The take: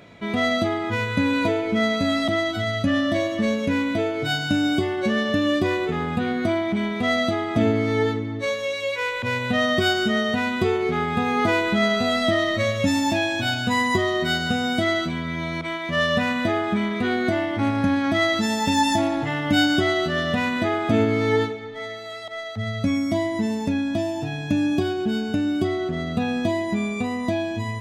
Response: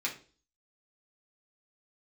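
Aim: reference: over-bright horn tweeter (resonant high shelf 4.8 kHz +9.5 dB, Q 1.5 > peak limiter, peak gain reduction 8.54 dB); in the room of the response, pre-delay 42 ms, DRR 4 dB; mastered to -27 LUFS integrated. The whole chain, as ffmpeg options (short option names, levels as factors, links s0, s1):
-filter_complex "[0:a]asplit=2[s0][s1];[1:a]atrim=start_sample=2205,adelay=42[s2];[s1][s2]afir=irnorm=-1:irlink=0,volume=0.355[s3];[s0][s3]amix=inputs=2:normalize=0,highshelf=f=4800:t=q:w=1.5:g=9.5,volume=0.75,alimiter=limit=0.126:level=0:latency=1"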